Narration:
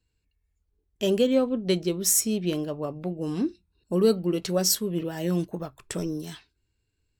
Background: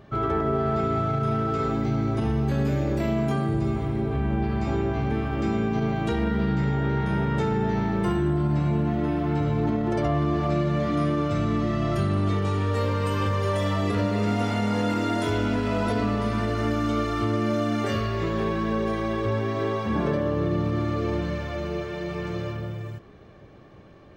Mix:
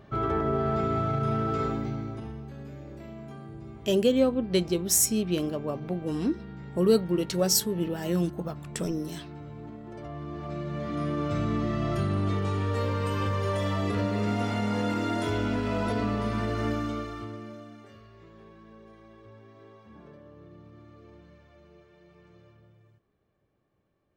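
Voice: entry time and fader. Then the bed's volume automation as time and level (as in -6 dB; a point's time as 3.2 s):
2.85 s, -0.5 dB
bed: 1.63 s -2.5 dB
2.51 s -18 dB
9.86 s -18 dB
11.33 s -3.5 dB
16.71 s -3.5 dB
17.91 s -25.5 dB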